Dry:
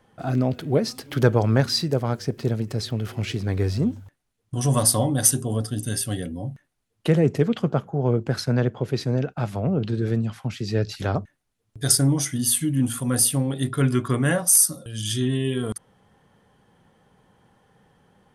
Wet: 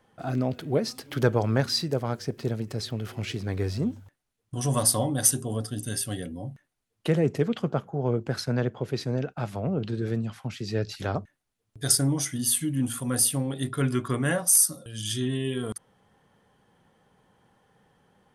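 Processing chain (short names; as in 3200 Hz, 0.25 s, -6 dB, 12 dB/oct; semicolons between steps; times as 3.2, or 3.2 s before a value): low shelf 230 Hz -3.5 dB; gain -3 dB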